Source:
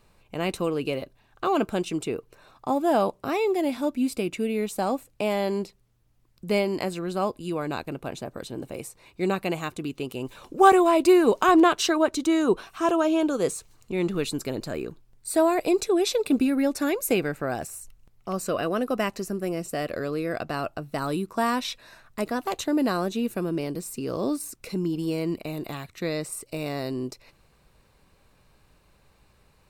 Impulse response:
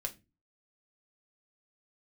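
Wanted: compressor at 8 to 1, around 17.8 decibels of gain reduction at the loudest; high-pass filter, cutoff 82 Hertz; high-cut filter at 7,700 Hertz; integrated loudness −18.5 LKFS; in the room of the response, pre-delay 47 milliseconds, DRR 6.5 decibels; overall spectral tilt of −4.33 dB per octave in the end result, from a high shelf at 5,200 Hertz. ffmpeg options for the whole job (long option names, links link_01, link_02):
-filter_complex "[0:a]highpass=82,lowpass=7700,highshelf=frequency=5200:gain=7.5,acompressor=threshold=-31dB:ratio=8,asplit=2[link_01][link_02];[1:a]atrim=start_sample=2205,adelay=47[link_03];[link_02][link_03]afir=irnorm=-1:irlink=0,volume=-7dB[link_04];[link_01][link_04]amix=inputs=2:normalize=0,volume=16.5dB"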